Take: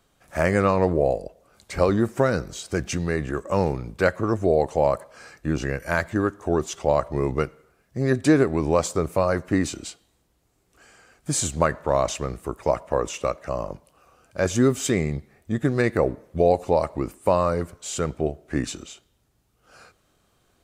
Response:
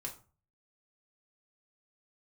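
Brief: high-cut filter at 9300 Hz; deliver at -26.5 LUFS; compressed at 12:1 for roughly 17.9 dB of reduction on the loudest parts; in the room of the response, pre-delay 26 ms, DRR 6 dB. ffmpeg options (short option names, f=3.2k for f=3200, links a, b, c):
-filter_complex "[0:a]lowpass=9.3k,acompressor=threshold=-32dB:ratio=12,asplit=2[a][b];[1:a]atrim=start_sample=2205,adelay=26[c];[b][c]afir=irnorm=-1:irlink=0,volume=-4dB[d];[a][d]amix=inputs=2:normalize=0,volume=10.5dB"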